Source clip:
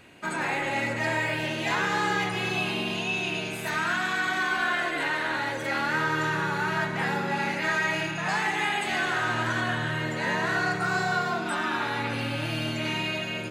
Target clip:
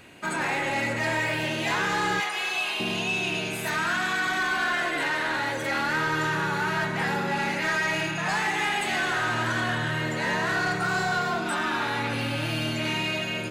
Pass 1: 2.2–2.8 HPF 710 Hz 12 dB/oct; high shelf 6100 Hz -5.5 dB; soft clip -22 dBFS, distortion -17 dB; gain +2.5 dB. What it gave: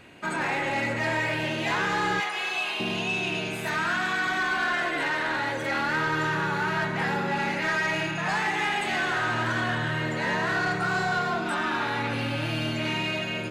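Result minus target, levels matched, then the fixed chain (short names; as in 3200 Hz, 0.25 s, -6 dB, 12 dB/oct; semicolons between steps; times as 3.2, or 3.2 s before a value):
8000 Hz band -4.5 dB
2.2–2.8 HPF 710 Hz 12 dB/oct; high shelf 6100 Hz +3.5 dB; soft clip -22 dBFS, distortion -17 dB; gain +2.5 dB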